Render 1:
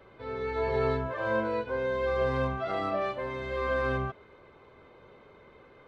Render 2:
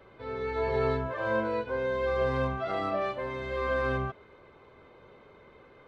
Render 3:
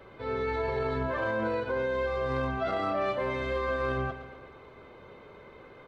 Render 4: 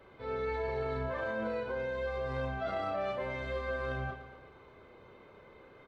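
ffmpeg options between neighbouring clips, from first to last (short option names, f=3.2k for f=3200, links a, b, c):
-af anull
-af "alimiter=level_in=2.5dB:limit=-24dB:level=0:latency=1:release=18,volume=-2.5dB,aecho=1:1:119|238|357|476|595|714:0.251|0.143|0.0816|0.0465|0.0265|0.0151,volume=4dB"
-filter_complex "[0:a]asplit=2[a][b];[b]adelay=32,volume=-5.5dB[c];[a][c]amix=inputs=2:normalize=0,volume=-6.5dB"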